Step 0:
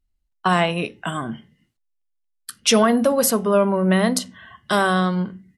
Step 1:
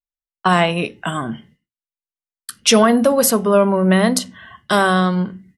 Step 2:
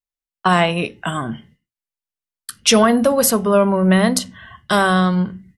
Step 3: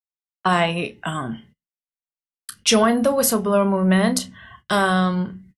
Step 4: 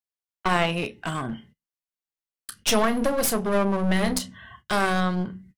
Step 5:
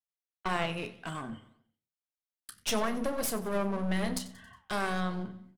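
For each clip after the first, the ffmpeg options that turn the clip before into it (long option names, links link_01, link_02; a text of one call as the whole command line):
ffmpeg -i in.wav -af "agate=range=-33dB:threshold=-47dB:ratio=3:detection=peak,volume=3.5dB" out.wav
ffmpeg -i in.wav -af "asubboost=boost=2.5:cutoff=150" out.wav
ffmpeg -i in.wav -filter_complex "[0:a]asplit=2[link_01][link_02];[link_02]adelay=31,volume=-12.5dB[link_03];[link_01][link_03]amix=inputs=2:normalize=0,agate=range=-20dB:threshold=-44dB:ratio=16:detection=peak,volume=-3.5dB" out.wav
ffmpeg -i in.wav -af "aeval=exprs='clip(val(0),-1,0.0473)':channel_layout=same,volume=-2dB" out.wav
ffmpeg -i in.wav -af "flanger=delay=8.6:depth=6.4:regen=-83:speed=1.8:shape=sinusoidal,aecho=1:1:91|182|273|364:0.126|0.0629|0.0315|0.0157,volume=-4.5dB" out.wav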